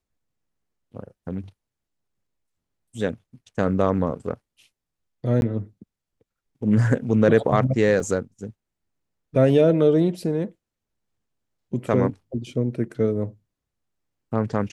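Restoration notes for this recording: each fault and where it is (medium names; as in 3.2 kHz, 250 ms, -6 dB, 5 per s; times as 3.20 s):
5.41–5.42 s: dropout 11 ms
8.00 s: dropout 3.5 ms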